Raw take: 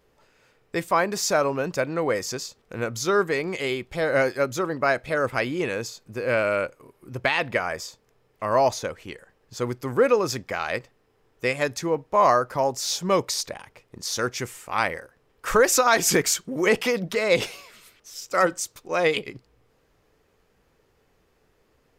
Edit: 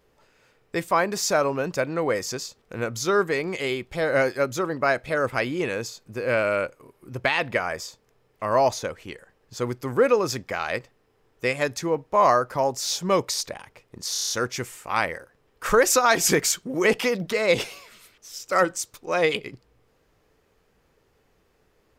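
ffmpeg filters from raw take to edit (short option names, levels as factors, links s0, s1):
-filter_complex "[0:a]asplit=7[s0][s1][s2][s3][s4][s5][s6];[s0]atrim=end=14.152[s7];[s1]atrim=start=14.118:end=14.152[s8];[s2]atrim=start=14.118:end=14.152[s9];[s3]atrim=start=14.118:end=14.152[s10];[s4]atrim=start=14.118:end=14.152[s11];[s5]atrim=start=14.118:end=14.152[s12];[s6]atrim=start=14.118[s13];[s7][s8]acrossfade=d=0.004:c1=hsin:c2=hsin[s14];[s14][s9]acrossfade=d=0.004:c1=hsin:c2=hsin[s15];[s15][s10]acrossfade=d=0.004:c1=hsin:c2=hsin[s16];[s16][s11]acrossfade=d=0.004:c1=hsin:c2=hsin[s17];[s17][s12]acrossfade=d=0.004:c1=hsin:c2=hsin[s18];[s18][s13]acrossfade=d=0.004:c1=hsin:c2=hsin"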